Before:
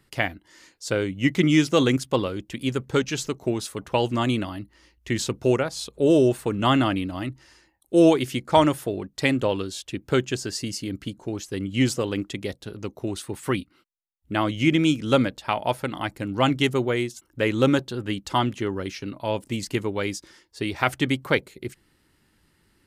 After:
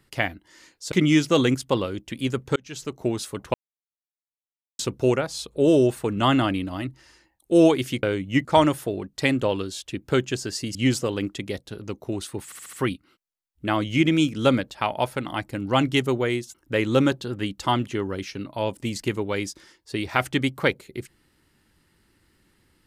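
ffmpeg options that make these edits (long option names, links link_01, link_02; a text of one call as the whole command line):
ffmpeg -i in.wav -filter_complex "[0:a]asplit=12[link_01][link_02][link_03][link_04][link_05][link_06][link_07][link_08][link_09][link_10][link_11][link_12];[link_01]atrim=end=0.922[link_13];[link_02]atrim=start=1.338:end=2.98,asetpts=PTS-STARTPTS,afade=type=out:start_time=1.638:duration=0.004:curve=hsin[link_14];[link_03]atrim=start=2.98:end=3.96,asetpts=PTS-STARTPTS,afade=type=in:duration=0.47,afade=type=out:start_time=0.976:duration=0.004:curve=hsin[link_15];[link_04]atrim=start=3.96:end=5.21,asetpts=PTS-STARTPTS,volume=0[link_16];[link_05]atrim=start=5.21:end=8.452,asetpts=PTS-STARTPTS,afade=type=in:duration=0.004:curve=hsin[link_17];[link_06]atrim=start=0.918:end=1.342[link_18];[link_07]atrim=start=8.448:end=10.752[link_19];[link_08]atrim=start=11.698:end=13.472[link_20];[link_09]atrim=start=13.398:end=13.472[link_21];[link_10]atrim=start=13.398:end=13.472[link_22];[link_11]atrim=start=13.398:end=13.472[link_23];[link_12]atrim=start=13.398[link_24];[link_14][link_15][link_16][link_17]concat=n=4:v=0:a=1[link_25];[link_13][link_25]acrossfade=duration=0.004:curve1=hsin:curve2=hsin[link_26];[link_26][link_18]acrossfade=duration=0.004:curve1=hsin:curve2=hsin[link_27];[link_27][link_19]acrossfade=duration=0.004:curve1=hsin:curve2=hsin[link_28];[link_28][link_20]acrossfade=duration=0.004:curve1=hsin:curve2=hsin[link_29];[link_29][link_21]acrossfade=duration=0.004:curve1=hsin:curve2=hsin[link_30];[link_30][link_22]acrossfade=duration=0.004:curve1=hsin:curve2=hsin[link_31];[link_31][link_23]acrossfade=duration=0.004:curve1=hsin:curve2=hsin[link_32];[link_32][link_24]acrossfade=duration=0.004:curve1=hsin:curve2=hsin" out.wav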